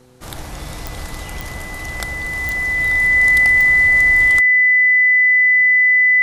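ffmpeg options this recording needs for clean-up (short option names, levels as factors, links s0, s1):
-af "adeclick=t=4,bandreject=f=125.9:t=h:w=4,bandreject=f=251.8:t=h:w=4,bandreject=f=377.7:t=h:w=4,bandreject=f=503.6:t=h:w=4,bandreject=f=2000:w=30"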